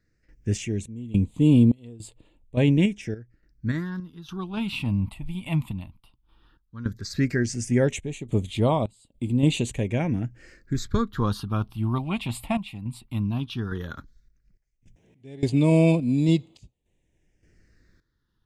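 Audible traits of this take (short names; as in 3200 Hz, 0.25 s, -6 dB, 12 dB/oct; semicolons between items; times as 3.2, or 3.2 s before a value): random-step tremolo, depth 95%; phasing stages 6, 0.14 Hz, lowest notch 420–1600 Hz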